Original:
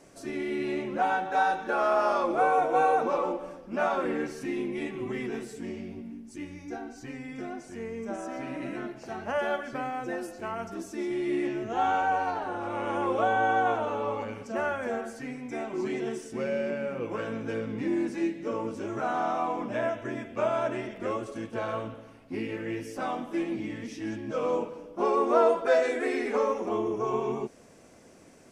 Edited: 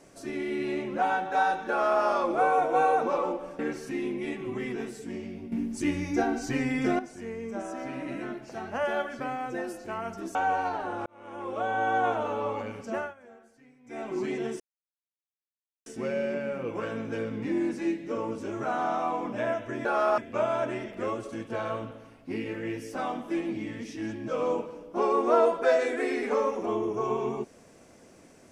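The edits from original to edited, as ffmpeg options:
-filter_complex "[0:a]asplit=11[a][b][c][d][e][f][g][h][i][j][k];[a]atrim=end=3.592[l];[b]atrim=start=4.128:end=6.062[m];[c]atrim=start=6.058:end=7.532,asetpts=PTS-STARTPTS,volume=11.5dB[n];[d]atrim=start=7.528:end=10.892[o];[e]atrim=start=11.968:end=12.68,asetpts=PTS-STARTPTS,afade=t=out:st=0.708:d=0.004:c=hsin[p];[f]atrim=start=12.68:end=14.76,asetpts=PTS-STARTPTS,afade=t=in:d=1.01,afade=t=out:st=1.87:d=0.21:silence=0.1[q];[g]atrim=start=14.76:end=15.46,asetpts=PTS-STARTPTS,volume=-20dB[r];[h]atrim=start=15.46:end=16.22,asetpts=PTS-STARTPTS,afade=t=in:d=0.21:silence=0.1,afade=t=out:st=0.756:d=0.004:c=hsin,apad=pad_dur=1.26[s];[i]atrim=start=16.22:end=20.212,asetpts=PTS-STARTPTS,afade=t=in:d=0.004:c=hsin[t];[j]atrim=start=1.688:end=2.022[u];[k]atrim=start=20.208[v];[l][m]acrossfade=d=0.004:c1=hsin:c2=hsin[w];[w][n]acrossfade=d=0.004:c1=hsin:c2=hsin[x];[x][o]acrossfade=d=0.004:c1=hsin:c2=hsin[y];[p][q][r][s][t]concat=n=5:v=0:a=1[z];[y][z]acrossfade=d=0.004:c1=hsin:c2=hsin[aa];[aa][u]acrossfade=d=0.004:c1=hsin:c2=hsin[ab];[ab][v]acrossfade=d=0.004:c1=hsin:c2=hsin"

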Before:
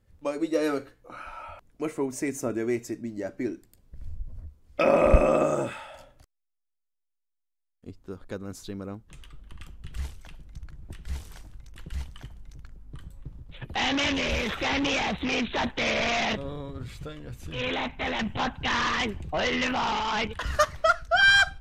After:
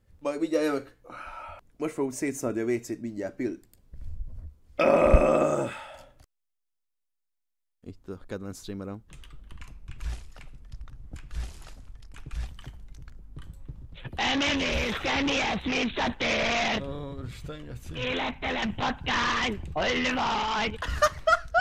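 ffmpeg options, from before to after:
-filter_complex "[0:a]asplit=3[a][b][c];[a]atrim=end=9.604[d];[b]atrim=start=9.6:end=12.04,asetpts=PTS-STARTPTS,asetrate=37485,aresample=44100[e];[c]atrim=start=12.036[f];[d][e]acrossfade=d=0.004:c1=hsin:c2=hsin[g];[g][f]acrossfade=d=0.004:c1=hsin:c2=hsin"

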